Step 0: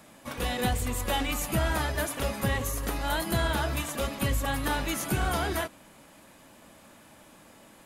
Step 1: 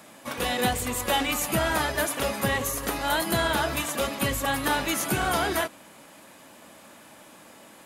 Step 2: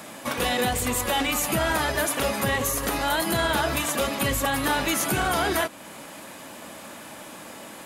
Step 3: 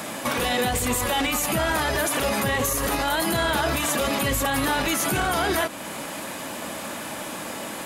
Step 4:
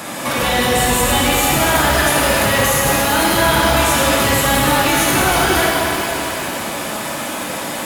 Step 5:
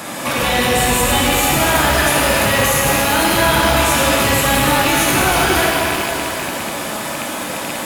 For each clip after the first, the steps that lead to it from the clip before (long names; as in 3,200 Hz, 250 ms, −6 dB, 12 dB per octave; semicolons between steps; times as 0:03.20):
high-pass filter 230 Hz 6 dB per octave; level +5 dB
brickwall limiter −17.5 dBFS, peak gain reduction 5.5 dB; downward compressor 1.5 to 1, threshold −39 dBFS, peak gain reduction 6 dB; level +8.5 dB
brickwall limiter −23 dBFS, peak gain reduction 10 dB; level +8 dB
reverb with rising layers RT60 3.1 s, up +7 semitones, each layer −8 dB, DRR −4.5 dB; level +3 dB
loose part that buzzes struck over −28 dBFS, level −13 dBFS